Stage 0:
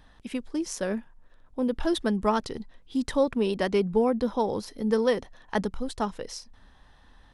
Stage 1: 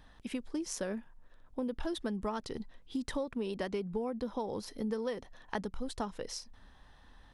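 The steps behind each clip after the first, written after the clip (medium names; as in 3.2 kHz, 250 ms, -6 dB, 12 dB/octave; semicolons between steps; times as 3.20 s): compression 6:1, threshold -30 dBFS, peak gain reduction 12 dB; trim -2.5 dB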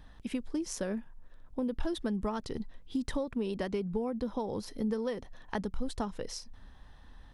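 bass shelf 250 Hz +6.5 dB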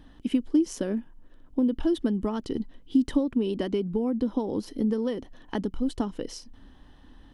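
small resonant body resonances 290/3000 Hz, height 13 dB, ringing for 25 ms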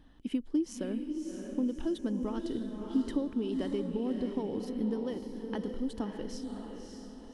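echo that smears into a reverb 592 ms, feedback 44%, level -5 dB; trim -7.5 dB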